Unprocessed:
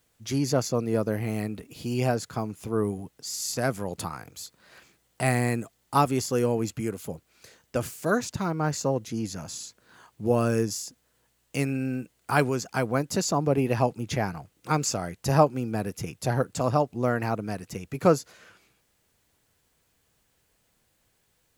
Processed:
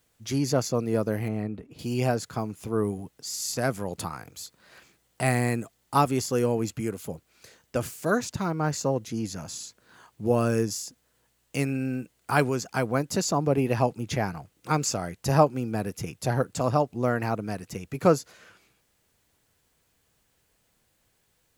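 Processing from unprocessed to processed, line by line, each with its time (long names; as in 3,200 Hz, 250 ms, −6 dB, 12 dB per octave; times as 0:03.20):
0:01.28–0:01.79: low-pass filter 1,100 Hz 6 dB per octave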